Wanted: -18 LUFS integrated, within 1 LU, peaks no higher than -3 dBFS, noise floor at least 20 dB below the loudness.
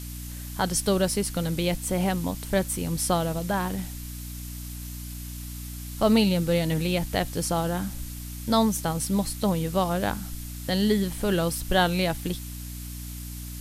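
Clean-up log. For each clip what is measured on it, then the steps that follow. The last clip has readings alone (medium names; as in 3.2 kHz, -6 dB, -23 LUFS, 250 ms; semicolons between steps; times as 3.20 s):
hum 60 Hz; highest harmonic 300 Hz; hum level -35 dBFS; noise floor -37 dBFS; noise floor target -46 dBFS; loudness -26.0 LUFS; peak level -9.0 dBFS; loudness target -18.0 LUFS
-> de-hum 60 Hz, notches 5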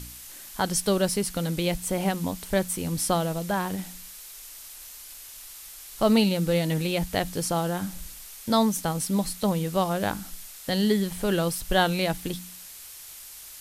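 hum not found; noise floor -44 dBFS; noise floor target -46 dBFS
-> noise print and reduce 6 dB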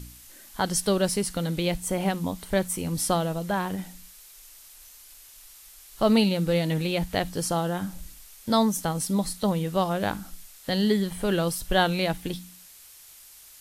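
noise floor -50 dBFS; loudness -26.0 LUFS; peak level -9.0 dBFS; loudness target -18.0 LUFS
-> trim +8 dB; peak limiter -3 dBFS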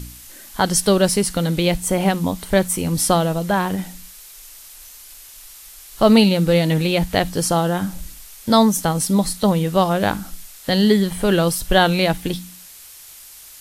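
loudness -18.0 LUFS; peak level -3.0 dBFS; noise floor -42 dBFS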